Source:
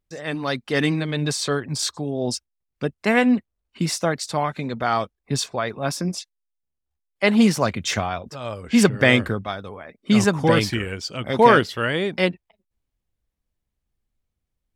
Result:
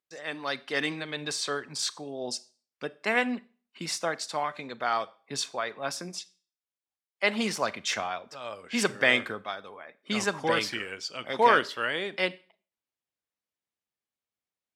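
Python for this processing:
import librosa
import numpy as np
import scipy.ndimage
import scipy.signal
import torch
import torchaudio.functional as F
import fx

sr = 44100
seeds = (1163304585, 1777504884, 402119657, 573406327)

y = fx.weighting(x, sr, curve='A')
y = fx.rev_schroeder(y, sr, rt60_s=0.4, comb_ms=29, drr_db=18.0)
y = F.gain(torch.from_numpy(y), -5.5).numpy()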